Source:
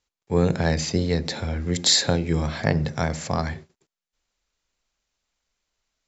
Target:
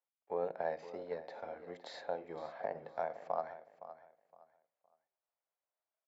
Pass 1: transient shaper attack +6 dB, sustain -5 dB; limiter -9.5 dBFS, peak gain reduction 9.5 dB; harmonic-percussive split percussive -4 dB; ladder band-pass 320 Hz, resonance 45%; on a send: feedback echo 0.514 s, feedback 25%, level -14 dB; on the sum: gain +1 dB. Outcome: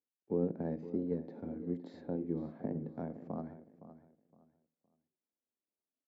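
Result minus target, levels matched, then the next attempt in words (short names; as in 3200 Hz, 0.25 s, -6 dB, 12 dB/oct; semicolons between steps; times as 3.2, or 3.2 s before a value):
250 Hz band +15.0 dB
transient shaper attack +6 dB, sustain -5 dB; limiter -9.5 dBFS, peak gain reduction 9.5 dB; harmonic-percussive split percussive -4 dB; ladder band-pass 770 Hz, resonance 45%; on a send: feedback echo 0.514 s, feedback 25%, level -14 dB; on the sum: gain +1 dB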